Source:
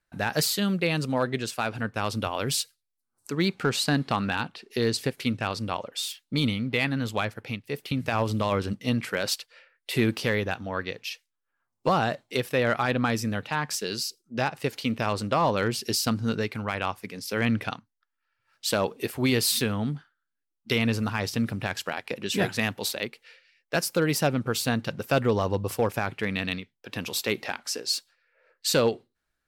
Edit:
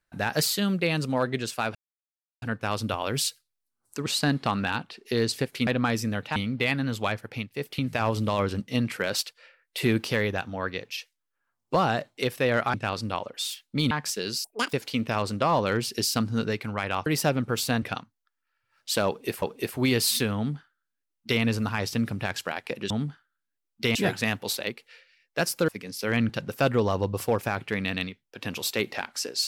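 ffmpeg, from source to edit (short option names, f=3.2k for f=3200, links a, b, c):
-filter_complex "[0:a]asplit=16[a][b][c][d][e][f][g][h][i][j][k][l][m][n][o][p];[a]atrim=end=1.75,asetpts=PTS-STARTPTS,afade=t=out:st=1.746:d=0.004:c=hsin,apad=pad_dur=0.67[q];[b]atrim=start=1.75:end=3.392,asetpts=PTS-STARTPTS,afade=t=in:d=0.004:c=hsin[r];[c]atrim=start=3.708:end=5.322[s];[d]atrim=start=12.868:end=13.562[t];[e]atrim=start=6.488:end=12.872[u];[f]atrim=start=5.318:end=6.492[v];[g]atrim=start=13.558:end=14.094[w];[h]atrim=start=14.09:end=14.64,asetpts=PTS-STARTPTS,asetrate=82908,aresample=44100[x];[i]atrim=start=14.636:end=16.972[y];[j]atrim=start=24.038:end=24.802[z];[k]atrim=start=17.578:end=19.182[aa];[l]atrim=start=18.828:end=22.312[ab];[m]atrim=start=19.768:end=20.822[ac];[n]atrim=start=22.308:end=24.042[ad];[o]atrim=start=16.968:end=17.582[ae];[p]atrim=start=24.798[af];[q][r]concat=n=2:v=0:a=1[ag];[ag][s]acrossfade=d=0.004:c1=hsin:c2=hsin[ah];[ah][t]acrossfade=d=0.004:c1=hsin:c2=hsin[ai];[ai][u]acrossfade=d=0.004:c1=hsin:c2=hsin[aj];[aj][v]acrossfade=d=0.004:c1=hsin:c2=hsin[ak];[ak][w]acrossfade=d=0.004:c1=hsin:c2=hsin[al];[al][x]acrossfade=d=0.004:c1=hsin:c2=hsin[am];[am][y]acrossfade=d=0.004:c1=hsin:c2=hsin[an];[an][z]acrossfade=d=0.004:c1=hsin:c2=hsin[ao];[ao][aa]acrossfade=d=0.004:c1=hsin:c2=hsin[ap];[ap][ab]acrossfade=d=0.004:c1=hsin:c2=hsin[aq];[aq][ac]acrossfade=d=0.004:c1=hsin:c2=hsin[ar];[ar][ad]acrossfade=d=0.004:c1=hsin:c2=hsin[as];[as][ae]acrossfade=d=0.004:c1=hsin:c2=hsin[at];[at][af]acrossfade=d=0.004:c1=hsin:c2=hsin"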